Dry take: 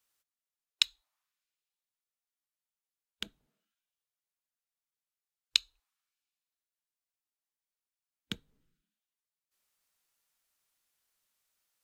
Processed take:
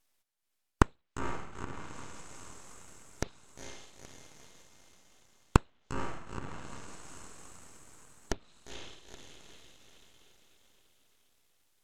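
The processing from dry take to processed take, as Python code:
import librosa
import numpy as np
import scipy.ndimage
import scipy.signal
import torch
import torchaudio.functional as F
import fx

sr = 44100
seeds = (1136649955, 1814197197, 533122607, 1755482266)

y = fx.echo_diffused(x, sr, ms=474, feedback_pct=56, wet_db=-5.5)
y = np.abs(y)
y = fx.env_lowpass_down(y, sr, base_hz=2300.0, full_db=-39.0)
y = F.gain(torch.from_numpy(y), 6.5).numpy()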